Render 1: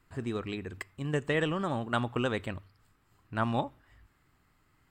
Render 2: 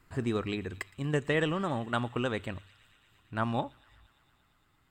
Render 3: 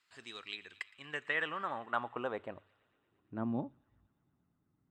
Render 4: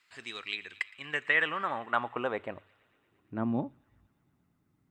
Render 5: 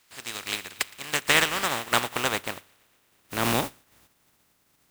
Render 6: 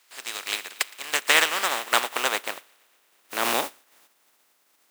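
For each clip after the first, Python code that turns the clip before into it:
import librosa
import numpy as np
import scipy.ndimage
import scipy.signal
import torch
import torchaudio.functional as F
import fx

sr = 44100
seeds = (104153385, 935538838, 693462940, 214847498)

y1 = fx.rider(x, sr, range_db=10, speed_s=2.0)
y1 = fx.echo_wet_highpass(y1, sr, ms=115, feedback_pct=83, hz=2500.0, wet_db=-19.0)
y2 = fx.filter_sweep_bandpass(y1, sr, from_hz=4100.0, to_hz=200.0, start_s=0.41, end_s=3.82, q=1.3)
y3 = fx.peak_eq(y2, sr, hz=2200.0, db=5.5, octaves=0.55)
y3 = y3 * 10.0 ** (5.0 / 20.0)
y4 = fx.spec_flatten(y3, sr, power=0.3)
y4 = y4 * 10.0 ** (6.0 / 20.0)
y5 = scipy.signal.sosfilt(scipy.signal.butter(2, 430.0, 'highpass', fs=sr, output='sos'), y4)
y5 = y5 * 10.0 ** (2.0 / 20.0)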